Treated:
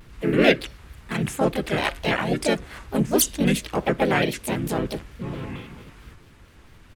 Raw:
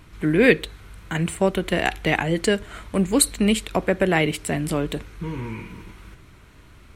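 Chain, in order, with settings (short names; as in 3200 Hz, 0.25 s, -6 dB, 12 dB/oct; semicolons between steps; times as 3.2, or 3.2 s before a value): harmoniser -4 st -3 dB, +4 st -2 dB, +5 st -9 dB; shaped vibrato square 4.5 Hz, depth 160 cents; gain -5 dB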